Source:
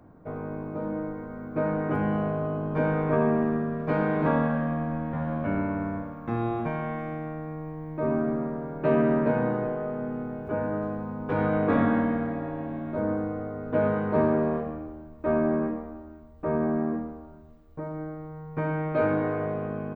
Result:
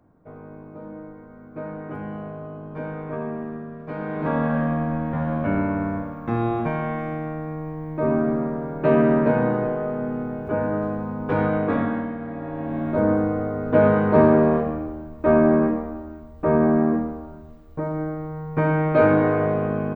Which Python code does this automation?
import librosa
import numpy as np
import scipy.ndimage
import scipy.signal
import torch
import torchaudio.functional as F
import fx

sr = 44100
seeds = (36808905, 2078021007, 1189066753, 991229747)

y = fx.gain(x, sr, db=fx.line((3.93, -6.5), (4.59, 5.0), (11.33, 5.0), (12.17, -4.5), (12.82, 8.0)))